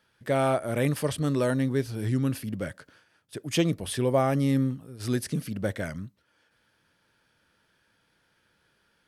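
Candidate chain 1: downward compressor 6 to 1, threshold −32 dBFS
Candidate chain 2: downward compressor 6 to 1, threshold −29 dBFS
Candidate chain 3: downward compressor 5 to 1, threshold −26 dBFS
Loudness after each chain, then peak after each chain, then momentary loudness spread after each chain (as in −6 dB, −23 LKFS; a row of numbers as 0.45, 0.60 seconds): −36.5, −34.5, −32.0 LKFS; −22.0, −19.5, −17.5 dBFS; 7, 6, 8 LU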